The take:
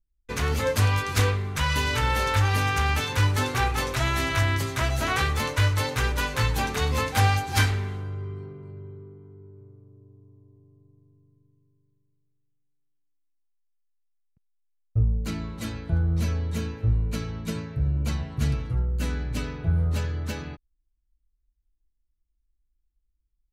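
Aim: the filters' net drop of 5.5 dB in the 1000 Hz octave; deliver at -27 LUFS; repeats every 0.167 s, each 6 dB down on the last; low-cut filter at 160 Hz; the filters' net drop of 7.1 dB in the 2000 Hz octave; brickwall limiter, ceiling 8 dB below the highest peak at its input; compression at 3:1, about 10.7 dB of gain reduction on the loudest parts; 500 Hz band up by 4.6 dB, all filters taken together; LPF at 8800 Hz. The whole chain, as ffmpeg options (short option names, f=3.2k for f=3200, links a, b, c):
-af "highpass=160,lowpass=8.8k,equalizer=f=500:t=o:g=7.5,equalizer=f=1k:t=o:g=-8,equalizer=f=2k:t=o:g=-7,acompressor=threshold=-32dB:ratio=3,alimiter=level_in=3dB:limit=-24dB:level=0:latency=1,volume=-3dB,aecho=1:1:167|334|501|668|835|1002:0.501|0.251|0.125|0.0626|0.0313|0.0157,volume=9.5dB"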